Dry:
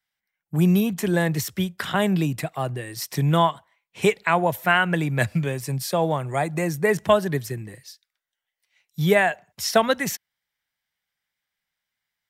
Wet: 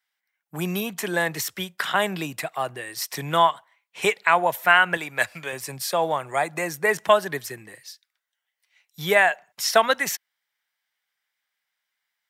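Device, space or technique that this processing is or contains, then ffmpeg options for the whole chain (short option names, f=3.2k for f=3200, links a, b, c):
filter by subtraction: -filter_complex "[0:a]asplit=2[a][b];[b]lowpass=1.1k,volume=-1[c];[a][c]amix=inputs=2:normalize=0,asettb=1/sr,asplit=3[d][e][f];[d]atrim=end=4.974[g];[e]atrim=start=4.97:end=5.53,asetpts=PTS-STARTPTS,afade=t=in:d=0.004:c=qsin,afade=t=out:st=0.556:d=0.004:c=qsin,equalizer=f=150:t=o:w=2.7:g=-8.5[h];[f]atrim=start=5.526[i];[g][h]acrossfade=d=0.004:c1=hsin:c2=qsin[j];[j][i]acrossfade=d=0.004:c1=qsin:c2=hsin,volume=1.5dB"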